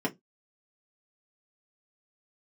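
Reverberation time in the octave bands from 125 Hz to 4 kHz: 0.25, 0.25, 0.20, 0.10, 0.15, 0.10 s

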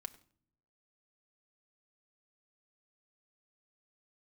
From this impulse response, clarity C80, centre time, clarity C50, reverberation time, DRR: 18.5 dB, 4 ms, 17.0 dB, not exponential, 6.5 dB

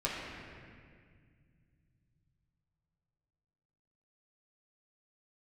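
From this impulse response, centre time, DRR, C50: 0.124 s, -6.5 dB, -1.0 dB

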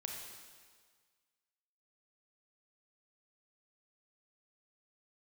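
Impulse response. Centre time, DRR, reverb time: 68 ms, 0.0 dB, 1.7 s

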